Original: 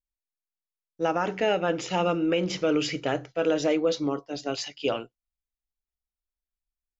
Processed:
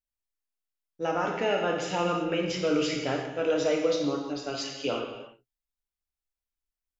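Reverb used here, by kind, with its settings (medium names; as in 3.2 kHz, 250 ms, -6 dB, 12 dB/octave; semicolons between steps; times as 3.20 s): gated-style reverb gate 390 ms falling, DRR 0 dB; trim -4 dB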